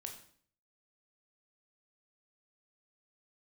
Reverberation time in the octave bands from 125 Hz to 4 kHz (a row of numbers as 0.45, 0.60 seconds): 0.70, 0.65, 0.55, 0.50, 0.50, 0.50 seconds